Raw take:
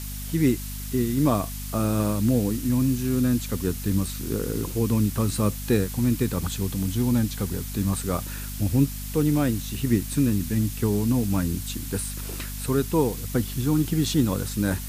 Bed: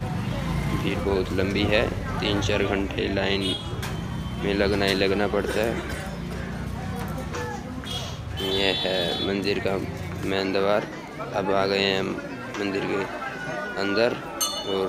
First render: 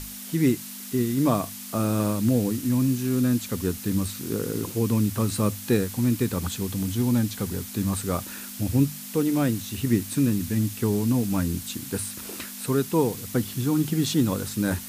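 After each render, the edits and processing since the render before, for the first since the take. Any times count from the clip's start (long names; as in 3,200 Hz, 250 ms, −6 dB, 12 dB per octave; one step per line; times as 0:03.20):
mains-hum notches 50/100/150 Hz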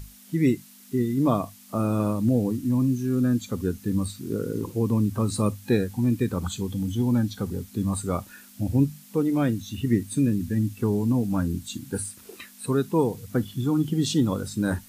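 noise reduction from a noise print 12 dB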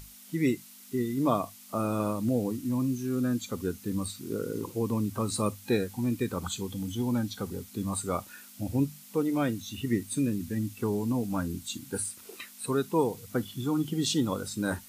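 low-shelf EQ 300 Hz −9.5 dB
notch filter 1,700 Hz, Q 15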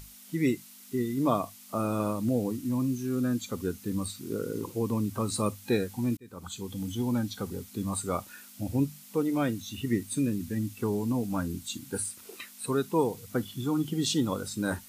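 0:06.17–0:06.82: fade in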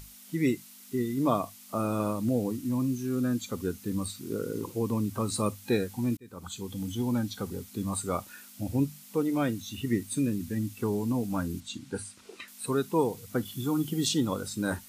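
0:11.60–0:12.48: high-frequency loss of the air 69 metres
0:13.45–0:14.09: high-shelf EQ 9,400 Hz +7.5 dB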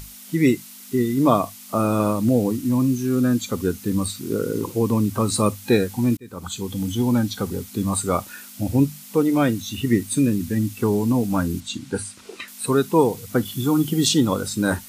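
level +9 dB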